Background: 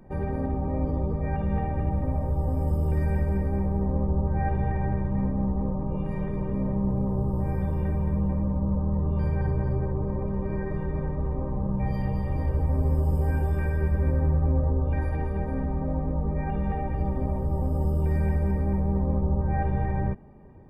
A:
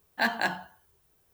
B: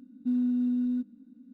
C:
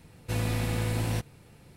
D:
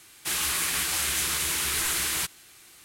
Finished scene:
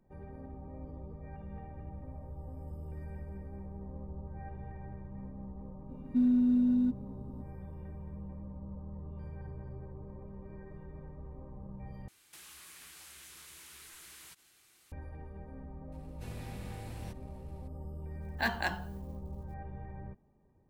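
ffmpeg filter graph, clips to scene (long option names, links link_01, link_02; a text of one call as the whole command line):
ffmpeg -i bed.wav -i cue0.wav -i cue1.wav -i cue2.wav -i cue3.wav -filter_complex "[0:a]volume=-18.5dB[link_01];[2:a]acontrast=82[link_02];[4:a]acompressor=threshold=-37dB:ratio=6:attack=3.2:release=140:knee=1:detection=peak[link_03];[3:a]acompressor=mode=upward:threshold=-37dB:ratio=2.5:attack=0.15:release=21:knee=2.83:detection=peak[link_04];[1:a]acrusher=bits=9:mix=0:aa=0.000001[link_05];[link_01]asplit=2[link_06][link_07];[link_06]atrim=end=12.084[link_08];[link_03]atrim=end=2.84,asetpts=PTS-STARTPTS,volume=-13dB[link_09];[link_07]atrim=start=14.916[link_10];[link_02]atrim=end=1.53,asetpts=PTS-STARTPTS,volume=-6dB,afade=type=in:duration=0.004:curve=hsin,afade=type=out:start_time=1.526:duration=0.004:curve=hsin,adelay=259749S[link_11];[link_04]atrim=end=1.76,asetpts=PTS-STARTPTS,volume=-16.5dB,afade=type=in:duration=0.004:curve=hsin,afade=type=out:start_time=1.756:duration=0.004:curve=hsin,adelay=15920[link_12];[link_05]atrim=end=1.33,asetpts=PTS-STARTPTS,volume=-5.5dB,afade=type=in:duration=0.004:curve=hsin,afade=type=out:start_time=1.326:duration=0.004:curve=hsin,adelay=18210[link_13];[link_08][link_09]acrossfade=duration=0.004:curve1=hsin:curve2=hsin[link_14];[link_14][link_10]acrossfade=duration=0.004:curve1=hsin:curve2=hsin[link_15];[link_15][link_11][link_12][link_13]amix=inputs=4:normalize=0" out.wav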